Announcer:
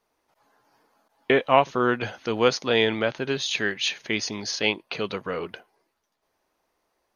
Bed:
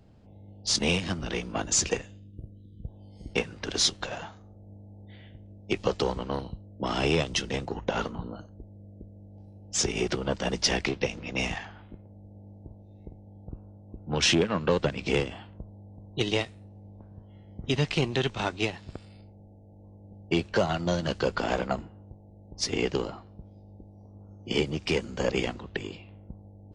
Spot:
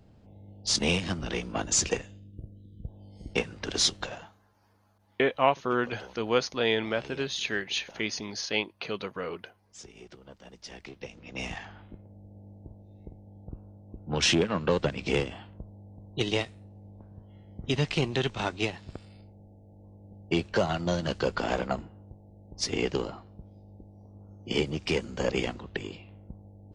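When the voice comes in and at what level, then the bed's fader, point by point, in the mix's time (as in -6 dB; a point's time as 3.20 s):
3.90 s, -5.0 dB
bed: 4.04 s -0.5 dB
4.55 s -21 dB
10.61 s -21 dB
11.72 s -1 dB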